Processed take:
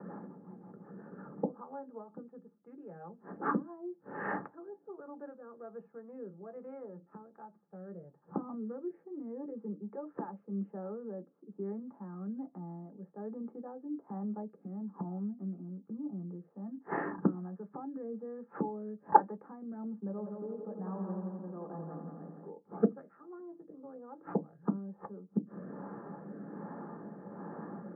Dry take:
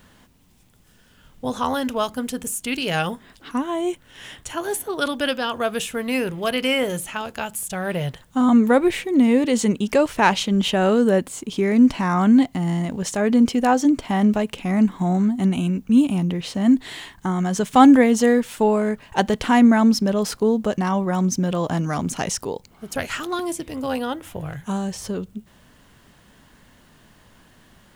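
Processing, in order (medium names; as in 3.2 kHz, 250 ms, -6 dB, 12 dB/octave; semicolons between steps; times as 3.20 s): local Wiener filter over 9 samples; peak limiter -12.5 dBFS, peak gain reduction 10.5 dB; high-pass 230 Hz 6 dB/octave; inverted gate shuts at -27 dBFS, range -33 dB; rotary cabinet horn 5.5 Hz, later 1.2 Hz, at 3.14 s; level-controlled noise filter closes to 680 Hz, open at -25 dBFS; inverse Chebyshev low-pass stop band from 6.5 kHz, stop band 70 dB; peaking EQ 920 Hz +10.5 dB 2.9 oct; 20.09–22.50 s: multi-head delay 86 ms, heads first and second, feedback 62%, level -7 dB; reverberation RT60 0.10 s, pre-delay 3 ms, DRR 6.5 dB; trim +3.5 dB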